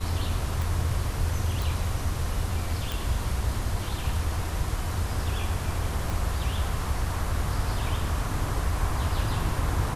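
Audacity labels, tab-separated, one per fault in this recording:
0.620000	0.620000	click
1.620000	1.620000	click
2.920000	2.920000	click
6.100000	6.100000	click

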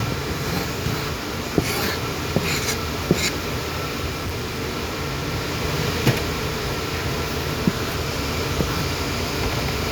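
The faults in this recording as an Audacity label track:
4.090000	4.630000	clipping −23 dBFS

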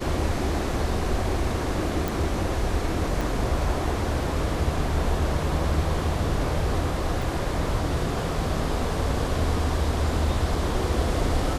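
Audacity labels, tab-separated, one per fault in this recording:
2.080000	2.080000	click
3.210000	3.210000	drop-out 3.7 ms
7.220000	7.220000	drop-out 2.9 ms

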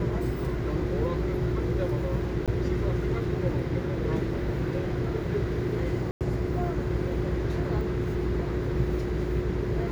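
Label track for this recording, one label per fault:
2.460000	2.480000	drop-out 17 ms
6.110000	6.210000	drop-out 98 ms

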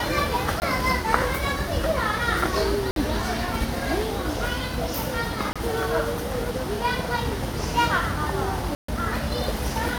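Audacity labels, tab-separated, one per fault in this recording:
0.600000	0.620000	drop-out 19 ms
2.910000	2.960000	drop-out 52 ms
5.530000	5.560000	drop-out 26 ms
8.750000	8.880000	drop-out 134 ms

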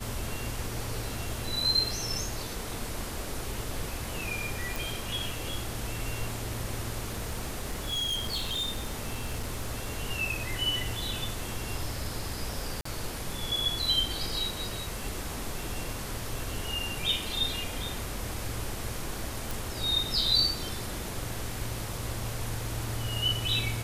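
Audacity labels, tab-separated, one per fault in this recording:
4.760000	4.760000	click
7.080000	9.910000	clipping −27.5 dBFS
12.810000	12.850000	drop-out 44 ms
19.510000	19.510000	click

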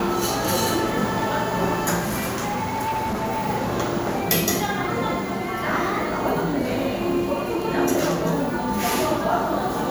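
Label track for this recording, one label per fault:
2.000000	3.480000	clipping −21.5 dBFS

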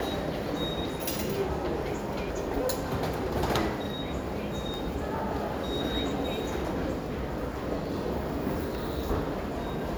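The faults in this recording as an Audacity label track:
4.740000	4.740000	click

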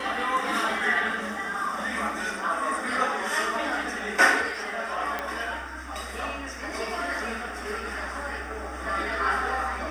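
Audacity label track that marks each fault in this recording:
5.190000	5.190000	click −15 dBFS

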